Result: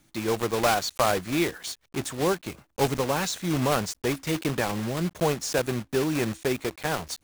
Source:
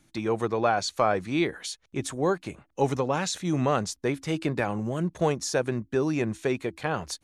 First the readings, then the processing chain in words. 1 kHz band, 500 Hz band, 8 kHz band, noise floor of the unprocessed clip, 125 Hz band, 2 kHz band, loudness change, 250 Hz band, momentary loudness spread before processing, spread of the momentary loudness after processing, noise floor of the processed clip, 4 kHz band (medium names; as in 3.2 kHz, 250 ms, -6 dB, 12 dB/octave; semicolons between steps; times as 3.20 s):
+0.5 dB, 0.0 dB, +3.5 dB, -69 dBFS, 0.0 dB, +2.0 dB, +0.5 dB, 0.0 dB, 6 LU, 6 LU, -70 dBFS, +4.0 dB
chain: block-companded coder 3-bit